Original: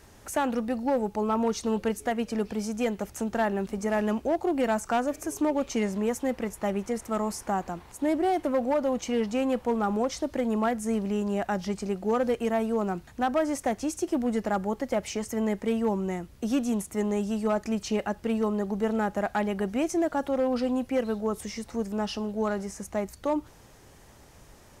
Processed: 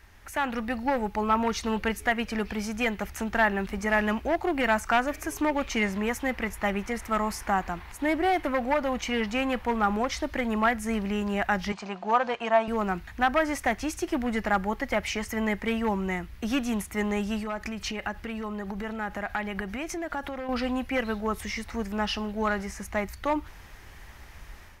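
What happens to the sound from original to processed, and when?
0:11.72–0:12.68: loudspeaker in its box 240–6,700 Hz, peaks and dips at 280 Hz −8 dB, 410 Hz −6 dB, 690 Hz +6 dB, 1,000 Hz +8 dB, 2,000 Hz −6 dB, 5,400 Hz −4 dB
0:17.42–0:20.49: downward compressor 5 to 1, threshold −30 dBFS
whole clip: octave-band graphic EQ 125/250/500/2,000/8,000 Hz −9/−6/−8/+7/−8 dB; automatic gain control gain up to 7.5 dB; low-shelf EQ 170 Hz +7.5 dB; level −2.5 dB

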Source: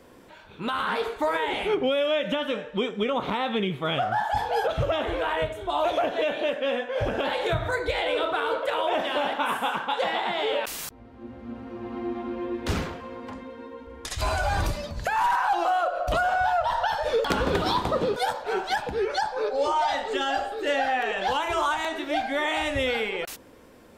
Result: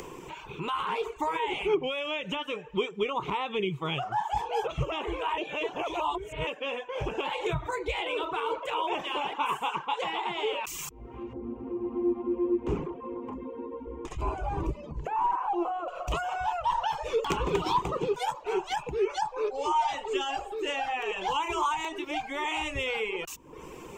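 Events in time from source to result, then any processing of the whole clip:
0:05.38–0:06.47: reverse
0:11.33–0:15.88: drawn EQ curve 180 Hz 0 dB, 250 Hz +9 dB, 5,700 Hz −19 dB
whole clip: EQ curve with evenly spaced ripples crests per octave 0.72, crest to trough 12 dB; reverb reduction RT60 0.52 s; upward compression, threshold −26 dBFS; level −5 dB

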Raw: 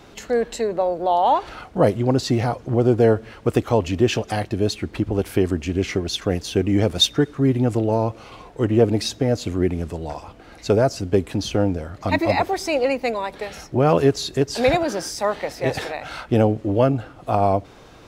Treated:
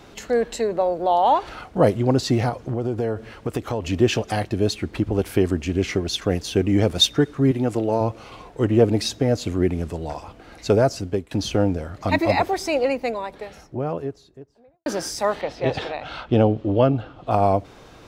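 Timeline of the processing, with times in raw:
0:02.49–0:03.86: downward compressor 3 to 1, threshold −22 dBFS
0:07.51–0:08.01: high-pass filter 210 Hz 6 dB per octave
0:10.81–0:11.31: fade out equal-power, to −22 dB
0:12.38–0:14.86: fade out and dull
0:15.41–0:17.31: drawn EQ curve 1,200 Hz 0 dB, 2,000 Hz −5 dB, 3,200 Hz +3 dB, 13,000 Hz −23 dB

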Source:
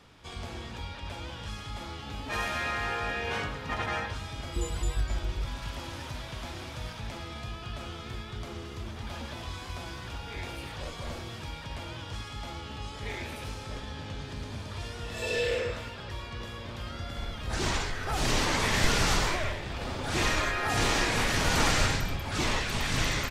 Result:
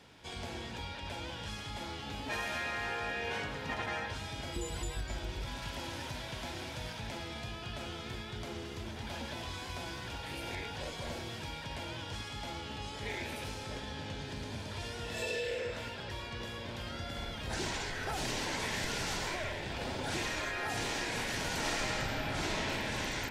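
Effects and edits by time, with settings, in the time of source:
0:10.23–0:10.75: reverse
0:21.60–0:22.70: thrown reverb, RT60 2.2 s, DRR −9.5 dB
whole clip: low-shelf EQ 80 Hz −10.5 dB; notch filter 1,200 Hz, Q 5.8; downward compressor, threshold −33 dBFS

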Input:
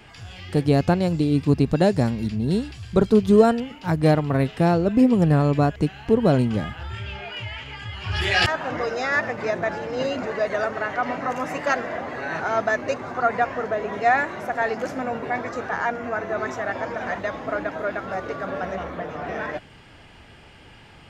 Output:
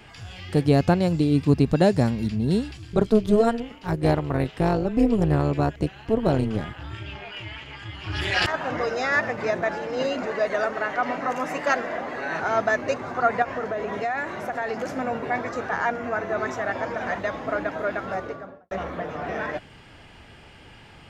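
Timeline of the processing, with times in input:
0:02.77–0:08.54: amplitude modulation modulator 220 Hz, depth 60%
0:09.60–0:12.41: parametric band 100 Hz −12 dB
0:13.42–0:14.94: downward compressor, threshold −23 dBFS
0:18.08–0:18.71: fade out and dull

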